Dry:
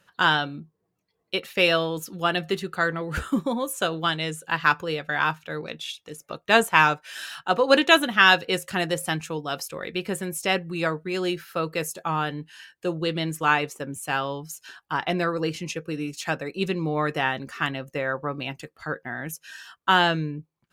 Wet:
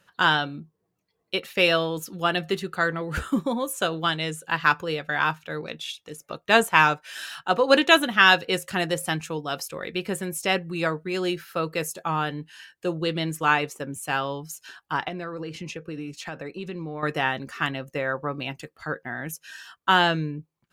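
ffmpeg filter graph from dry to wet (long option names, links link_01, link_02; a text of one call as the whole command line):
ffmpeg -i in.wav -filter_complex "[0:a]asettb=1/sr,asplit=3[link_01][link_02][link_03];[link_01]atrim=end=15.084[link_04];[link_02]atrim=start=15.08:end=17.03,asetpts=PTS-STARTPTS,afade=type=in:duration=0.004:curve=qsin,afade=type=out:start_time=1.946:duration=0.004:curve=qsin,aemphasis=mode=reproduction:type=cd,acompressor=threshold=-30dB:ratio=6:attack=3.2:release=140:knee=1:detection=peak[link_05];[link_03]atrim=start=17.026[link_06];[link_04][link_05]acrossfade=duration=0.004:curve1=hsin:curve2=qsin[link_07];[link_07][link_06]acrossfade=duration=0.004:curve1=qsin:curve2=hsin" out.wav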